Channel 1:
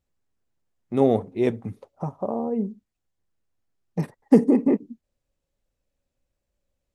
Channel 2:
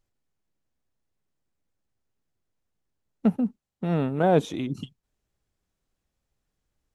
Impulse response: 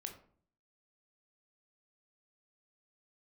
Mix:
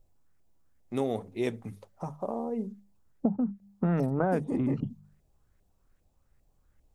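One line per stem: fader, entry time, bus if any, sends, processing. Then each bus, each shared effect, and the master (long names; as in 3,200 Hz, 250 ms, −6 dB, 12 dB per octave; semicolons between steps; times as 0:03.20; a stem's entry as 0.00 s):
−4.5 dB, 0.00 s, no send, spectral tilt +3 dB per octave
+3.0 dB, 0.00 s, no send, mains-hum notches 50/100/150/200 Hz; auto-filter low-pass saw up 2.5 Hz 600–2,100 Hz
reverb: not used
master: low-shelf EQ 170 Hz +11.5 dB; mains-hum notches 50/100/150/200 Hz; downward compressor 10 to 1, threshold −24 dBFS, peak gain reduction 16 dB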